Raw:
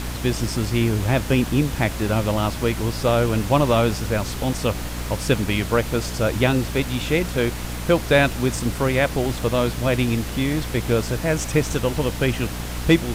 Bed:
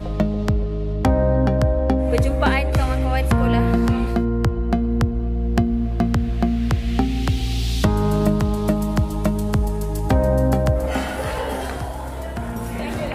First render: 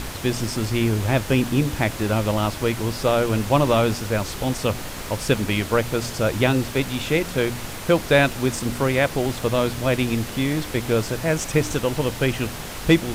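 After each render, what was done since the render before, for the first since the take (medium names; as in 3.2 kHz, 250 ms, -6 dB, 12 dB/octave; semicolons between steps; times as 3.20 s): de-hum 60 Hz, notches 5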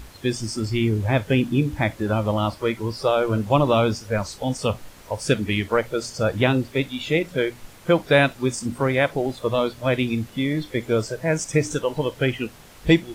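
noise print and reduce 14 dB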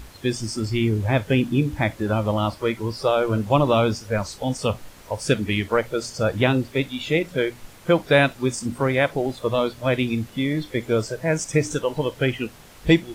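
no audible change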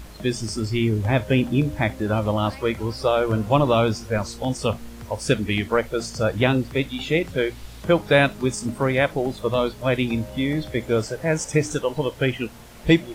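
add bed -20.5 dB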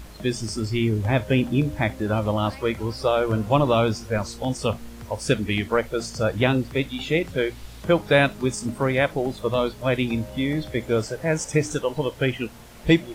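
trim -1 dB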